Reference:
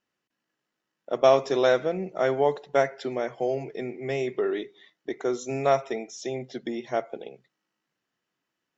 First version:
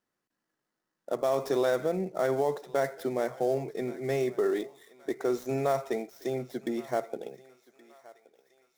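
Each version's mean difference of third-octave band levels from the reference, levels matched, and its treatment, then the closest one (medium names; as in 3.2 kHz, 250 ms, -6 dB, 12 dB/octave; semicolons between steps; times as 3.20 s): 6.0 dB: dead-time distortion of 0.06 ms; peaking EQ 2.8 kHz -7.5 dB 0.76 oct; peak limiter -18 dBFS, peak gain reduction 11 dB; thinning echo 1123 ms, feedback 52%, high-pass 720 Hz, level -18.5 dB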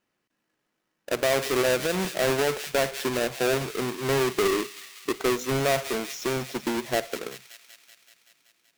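14.0 dB: square wave that keeps the level; peaking EQ 2.3 kHz +2.5 dB 0.32 oct; feedback echo behind a high-pass 190 ms, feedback 71%, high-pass 2.5 kHz, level -11 dB; peak limiter -17 dBFS, peak gain reduction 11 dB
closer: first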